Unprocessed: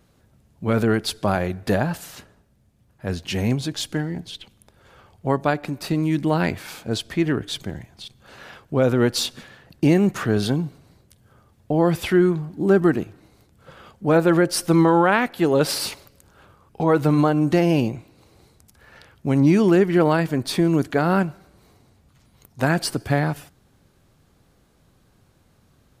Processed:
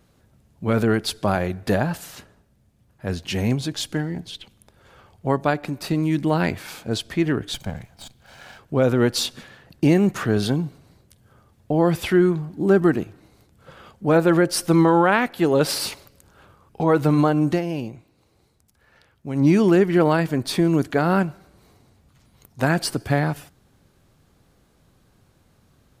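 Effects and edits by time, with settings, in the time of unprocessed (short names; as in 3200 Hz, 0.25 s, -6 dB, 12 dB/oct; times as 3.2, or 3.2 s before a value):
7.54–8.59 minimum comb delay 1.3 ms
17.49–19.46 dip -8.5 dB, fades 0.13 s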